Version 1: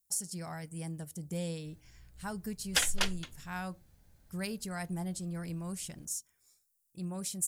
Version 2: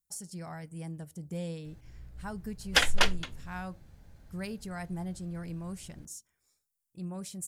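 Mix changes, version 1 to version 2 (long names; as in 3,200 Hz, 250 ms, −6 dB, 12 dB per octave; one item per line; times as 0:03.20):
background +9.0 dB
master: add high-shelf EQ 4,000 Hz −9 dB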